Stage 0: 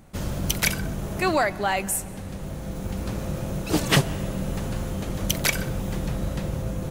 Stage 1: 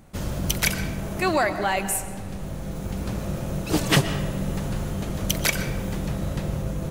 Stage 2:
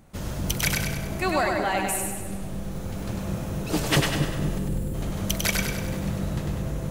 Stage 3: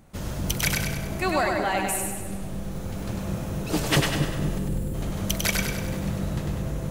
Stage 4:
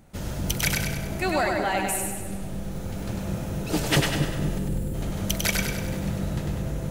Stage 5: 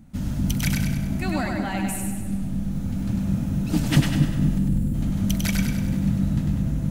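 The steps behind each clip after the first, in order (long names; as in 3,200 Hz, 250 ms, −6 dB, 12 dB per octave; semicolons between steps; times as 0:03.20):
convolution reverb RT60 1.4 s, pre-delay 85 ms, DRR 10.5 dB
gain on a spectral selection 0:04.58–0:04.94, 550–7,100 Hz −12 dB; echo with a time of its own for lows and highs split 450 Hz, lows 237 ms, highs 99 ms, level −3.5 dB; level −3 dB
no processing that can be heard
notch filter 1,100 Hz, Q 11
low shelf with overshoot 320 Hz +8 dB, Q 3; level −4 dB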